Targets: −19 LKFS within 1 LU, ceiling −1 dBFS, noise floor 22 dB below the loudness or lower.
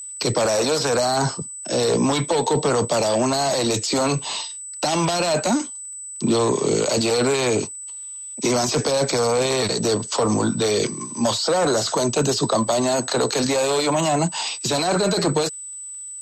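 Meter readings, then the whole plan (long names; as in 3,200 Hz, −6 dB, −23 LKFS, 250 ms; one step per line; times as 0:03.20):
crackle rate 28 per second; interfering tone 8,000 Hz; level of the tone −32 dBFS; integrated loudness −21.0 LKFS; sample peak −8.0 dBFS; target loudness −19.0 LKFS
→ click removal
notch filter 8,000 Hz, Q 30
level +2 dB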